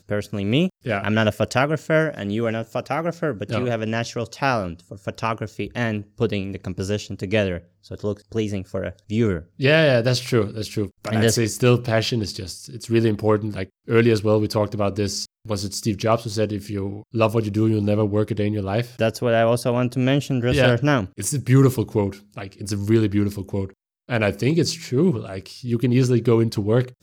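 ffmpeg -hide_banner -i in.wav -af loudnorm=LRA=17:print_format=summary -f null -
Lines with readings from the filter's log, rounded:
Input Integrated:    -21.8 LUFS
Input True Peak:      -4.8 dBTP
Input LRA:             5.3 LU
Input Threshold:     -32.0 LUFS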